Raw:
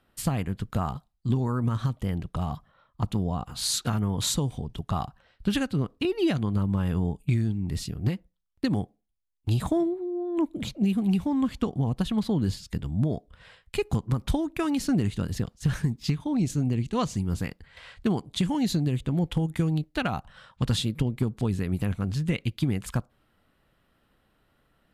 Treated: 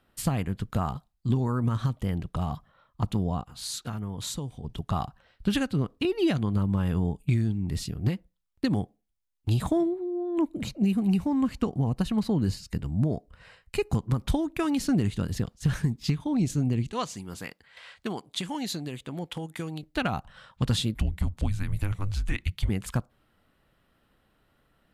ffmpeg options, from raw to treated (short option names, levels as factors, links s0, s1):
-filter_complex "[0:a]asettb=1/sr,asplit=3[s0][s1][s2];[s0]atrim=end=10.494[s3];[s1]atrim=start=10.49:end=13.97,asetpts=PTS-STARTPTS,afade=t=in:d=0.004:c=qsin,afade=t=out:st=3.476:d=0.004:c=qsin,bandreject=f=3400:w=5.8[s4];[s2]atrim=start=13.966[s5];[s3][s4]acrossfade=d=0.004:c1=hsin:c2=qsin[s6];[s6][s5]acrossfade=d=0.004:c1=qsin:c2=hsin,asettb=1/sr,asplit=3[s7][s8][s9];[s7]atrim=end=16.924[s10];[s8]atrim=start=16.92:end=19.83,asetpts=PTS-STARTPTS,afade=t=in:d=0.004:c=qsin,afade=t=out:st=2.906:d=0.004:c=qsin,highpass=f=600:p=1[s11];[s9]atrim=start=19.826[s12];[s10][s11]acrossfade=d=0.004:c1=hsin:c2=qsin[s13];[s13][s12]acrossfade=d=0.004:c1=qsin:c2=hsin,asplit=3[s14][s15][s16];[s14]afade=t=out:st=20.94:d=0.02[s17];[s15]afreqshift=-200,afade=t=in:st=20.94:d=0.02,afade=t=out:st=22.68:d=0.02[s18];[s16]afade=t=in:st=22.68:d=0.02[s19];[s17][s18][s19]amix=inputs=3:normalize=0,asplit=3[s20][s21][s22];[s20]atrim=end=3.412[s23];[s21]atrim=start=3.408:end=4.642,asetpts=PTS-STARTPTS,volume=0.422[s24];[s22]atrim=start=4.638[s25];[s23][s24]acrossfade=d=0.004:c1=hsin:c2=hsin[s26];[s26][s25]acrossfade=d=0.004:c1=hsin:c2=hsin"